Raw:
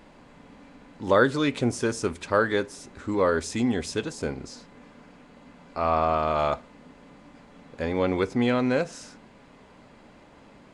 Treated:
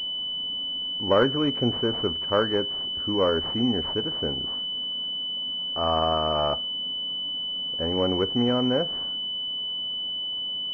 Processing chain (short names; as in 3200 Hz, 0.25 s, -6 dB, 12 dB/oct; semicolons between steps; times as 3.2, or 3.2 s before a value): pulse-width modulation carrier 3000 Hz